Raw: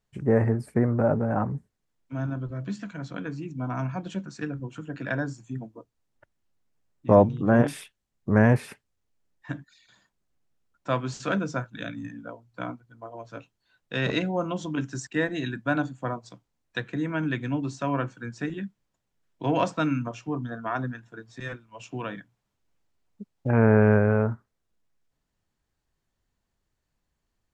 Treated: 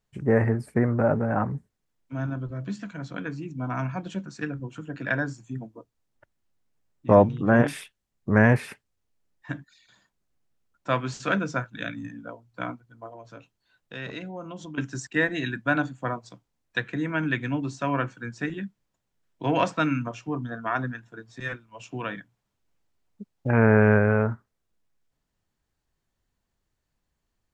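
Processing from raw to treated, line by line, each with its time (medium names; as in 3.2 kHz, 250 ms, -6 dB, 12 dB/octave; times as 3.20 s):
13.13–14.78 s: compression 2:1, threshold -42 dBFS
whole clip: dynamic bell 2 kHz, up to +6 dB, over -43 dBFS, Q 0.97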